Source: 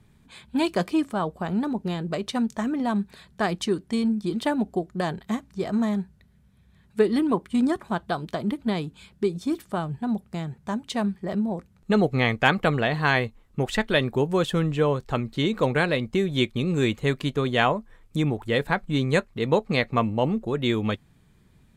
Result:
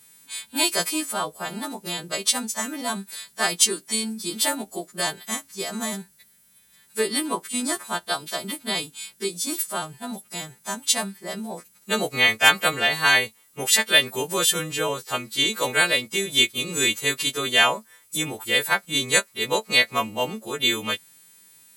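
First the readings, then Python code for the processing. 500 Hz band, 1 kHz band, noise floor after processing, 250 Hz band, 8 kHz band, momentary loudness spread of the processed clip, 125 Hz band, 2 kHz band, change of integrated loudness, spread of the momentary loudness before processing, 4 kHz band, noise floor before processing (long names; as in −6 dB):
−3.5 dB, +0.5 dB, −58 dBFS, −8.0 dB, +21.5 dB, 14 LU, −11.5 dB, +6.5 dB, +3.0 dB, 8 LU, +11.5 dB, −58 dBFS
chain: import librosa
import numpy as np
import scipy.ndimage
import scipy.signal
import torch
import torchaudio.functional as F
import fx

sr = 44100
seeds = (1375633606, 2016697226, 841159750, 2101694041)

y = fx.freq_snap(x, sr, grid_st=2)
y = scipy.signal.sosfilt(scipy.signal.butter(2, 78.0, 'highpass', fs=sr, output='sos'), y)
y = fx.riaa(y, sr, side='recording')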